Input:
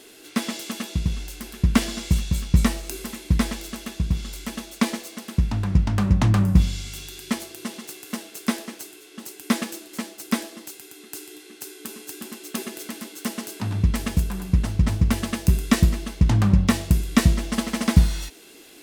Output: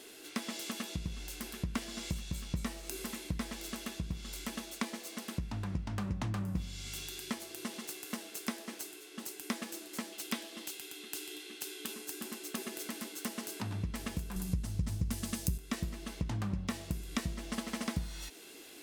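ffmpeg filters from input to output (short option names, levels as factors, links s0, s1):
-filter_complex "[0:a]asettb=1/sr,asplit=3[s0][s1][s2];[s0]atrim=end=10.124[s3];[s1]atrim=start=10.12:end=11.94,asetpts=PTS-STARTPTS,afade=t=in:d=0.004:c=qsin,afade=t=out:st=1.816:d=0.004:c=qsin,equalizer=f=3200:t=o:w=0.9:g=7[s4];[s2]atrim=start=11.936[s5];[s3][s4]acrossfade=d=0.004:c1=hsin:c2=qsin[s6];[s6][s5]acrossfade=d=0.004:c1=qsin:c2=hsin,asettb=1/sr,asplit=3[s7][s8][s9];[s7]atrim=end=14.364[s10];[s8]atrim=start=14.36:end=15.58,asetpts=PTS-STARTPTS,afade=t=in:d=0.004:c=qsin,afade=t=out:st=1.216:d=0.004:c=qsin,bass=f=250:g=10,treble=f=4000:g=11[s11];[s9]atrim=start=15.576[s12];[s10][s11]acrossfade=d=0.004:c1=hsin:c2=qsin[s13];[s13][s12]acrossfade=d=0.004:c1=qsin:c2=hsin,lowshelf=f=180:g=-5,acompressor=threshold=0.0251:ratio=3,volume=0.631"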